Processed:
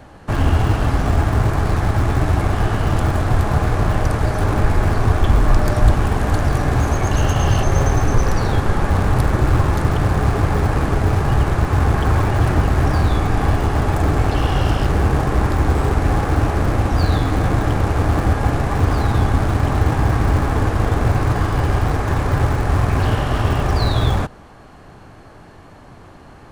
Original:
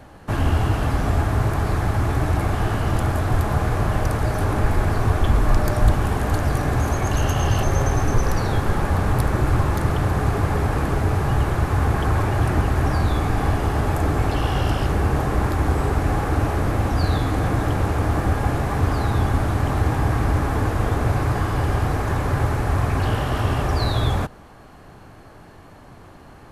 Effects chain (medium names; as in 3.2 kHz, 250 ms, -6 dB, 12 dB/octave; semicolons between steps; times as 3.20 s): peaking EQ 12 kHz -8 dB 0.39 oct; in parallel at -9 dB: Schmitt trigger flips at -15.5 dBFS; on the sum: trim +2.5 dB